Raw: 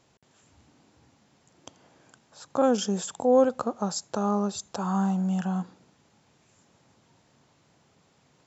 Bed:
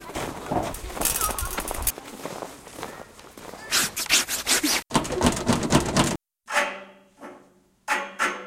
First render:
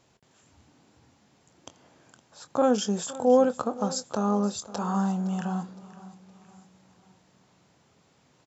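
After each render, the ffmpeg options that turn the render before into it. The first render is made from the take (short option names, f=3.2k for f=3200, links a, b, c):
-filter_complex "[0:a]asplit=2[a][b];[b]adelay=24,volume=-12.5dB[c];[a][c]amix=inputs=2:normalize=0,aecho=1:1:514|1028|1542|2056:0.133|0.0573|0.0247|0.0106"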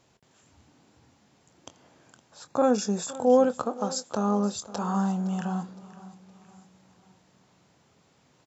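-filter_complex "[0:a]asettb=1/sr,asplit=3[a][b][c];[a]atrim=end=2.484[d];[b]atrim=start=2.48:end=3.12,asetpts=PTS-STARTPTS,afade=t=in:d=0.004:c=qsin,afade=t=out:st=0.636:d=0.004:c=qsin,asuperstop=centerf=3100:order=20:qfactor=6.8[e];[c]atrim=start=3.116[f];[d][e]acrossfade=d=0.004:c1=hsin:c2=qsin[g];[g][f]acrossfade=d=0.004:c1=qsin:c2=hsin,asettb=1/sr,asplit=3[h][i][j];[h]atrim=end=3.654[k];[i]atrim=start=3.65:end=4.12,asetpts=PTS-STARTPTS,afade=t=in:d=0.004:c=qsin,afade=t=out:st=0.466:d=0.004:c=qsin,highpass=210[l];[j]atrim=start=4.116[m];[k][l]acrossfade=d=0.004:c1=hsin:c2=qsin[n];[n][m]acrossfade=d=0.004:c1=qsin:c2=hsin"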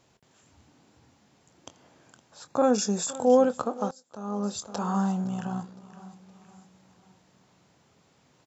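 -filter_complex "[0:a]asettb=1/sr,asplit=3[a][b][c];[a]atrim=end=2.734[d];[b]atrim=start=2.73:end=3.35,asetpts=PTS-STARTPTS,afade=t=in:d=0.004:c=qsin,afade=t=out:st=0.616:d=0.004:c=qsin,highshelf=f=4.3k:g=6[e];[c]atrim=start=3.346[f];[d][e]acrossfade=d=0.004:c1=hsin:c2=qsin[g];[g][f]acrossfade=d=0.004:c1=qsin:c2=hsin,asettb=1/sr,asplit=3[h][i][j];[h]atrim=end=5.244[k];[i]atrim=start=5.24:end=5.93,asetpts=PTS-STARTPTS,afade=t=in:d=0.004:c=qsin,afade=t=out:st=0.686:d=0.004:c=qsin,tremolo=f=62:d=0.519[l];[j]atrim=start=5.926[m];[k][l]acrossfade=d=0.004:c1=hsin:c2=qsin[n];[n][m]acrossfade=d=0.004:c1=qsin:c2=hsin,asplit=2[o][p];[o]atrim=end=3.91,asetpts=PTS-STARTPTS,afade=t=out:st=3.906:d=0.004:c=hsin:silence=0.0749894[q];[p]atrim=start=3.91,asetpts=PTS-STARTPTS,afade=t=in:d=0.66:c=qua:silence=0.0749894[r];[q][r]concat=n=2:v=0:a=1"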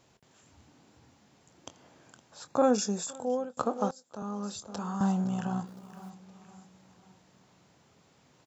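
-filter_complex "[0:a]asettb=1/sr,asplit=3[a][b][c];[a]atrim=end=4.224[d];[b]atrim=start=4.22:end=5.01,asetpts=PTS-STARTPTS,afade=t=in:d=0.004:c=qsin,afade=t=out:st=0.786:d=0.004:c=qsin,acrossover=split=370|1000[e][f][g];[e]acompressor=threshold=-36dB:ratio=4[h];[f]acompressor=threshold=-48dB:ratio=4[i];[g]acompressor=threshold=-41dB:ratio=4[j];[h][i][j]amix=inputs=3:normalize=0[k];[c]atrim=start=5.006[l];[d][k]acrossfade=d=0.004:c1=hsin:c2=qsin[m];[m][l]acrossfade=d=0.004:c1=qsin:c2=hsin,asplit=3[n][o][p];[n]afade=t=out:st=5.66:d=0.02[q];[o]acrusher=bits=5:mode=log:mix=0:aa=0.000001,afade=t=in:st=5.66:d=0.02,afade=t=out:st=6.09:d=0.02[r];[p]afade=t=in:st=6.09:d=0.02[s];[q][r][s]amix=inputs=3:normalize=0,asplit=2[t][u];[t]atrim=end=3.57,asetpts=PTS-STARTPTS,afade=t=out:st=2.45:d=1.12:silence=0.0749894[v];[u]atrim=start=3.57,asetpts=PTS-STARTPTS,afade=t=in:d=0.004:c=hsin:silence=0.0749894[w];[v][w]concat=n=2:v=0:a=1"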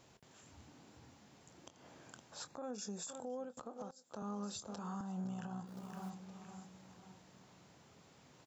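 -af "acompressor=threshold=-37dB:ratio=5,alimiter=level_in=10.5dB:limit=-24dB:level=0:latency=1:release=221,volume=-10.5dB"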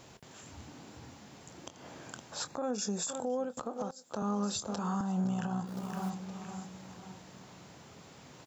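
-af "volume=10dB"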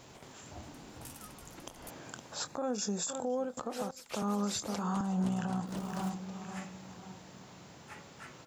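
-filter_complex "[1:a]volume=-26.5dB[a];[0:a][a]amix=inputs=2:normalize=0"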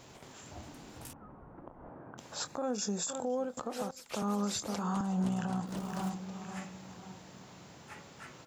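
-filter_complex "[0:a]asettb=1/sr,asplit=3[a][b][c];[a]atrim=end=1.134[d];[b]atrim=start=1.13:end=2.18,asetpts=PTS-STARTPTS,afade=t=in:d=0.004:c=qsin,afade=t=out:st=1.046:d=0.004:c=qsin,lowpass=f=1.3k:w=0.5412,lowpass=f=1.3k:w=1.3066[e];[c]atrim=start=2.176[f];[d][e]acrossfade=d=0.004:c1=hsin:c2=qsin[g];[g][f]acrossfade=d=0.004:c1=qsin:c2=hsin"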